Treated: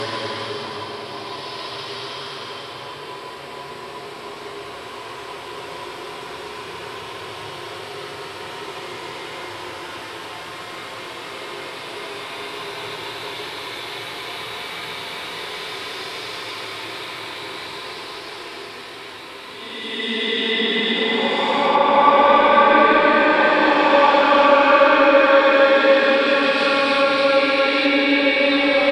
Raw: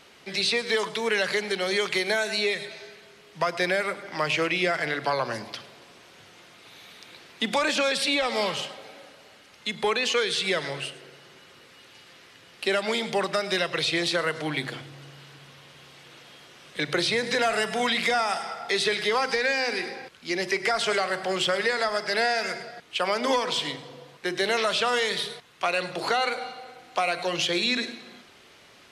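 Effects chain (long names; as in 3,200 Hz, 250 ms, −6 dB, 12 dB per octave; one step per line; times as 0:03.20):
thirty-one-band graphic EQ 200 Hz −11 dB, 400 Hz +10 dB, 1,000 Hz +10 dB, 6,300 Hz −9 dB
single-tap delay 174 ms −3 dB
automatic gain control gain up to 16.5 dB
extreme stretch with random phases 11×, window 0.25 s, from 0:05.55
treble cut that deepens with the level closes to 2,400 Hz, closed at −10.5 dBFS
level −1 dB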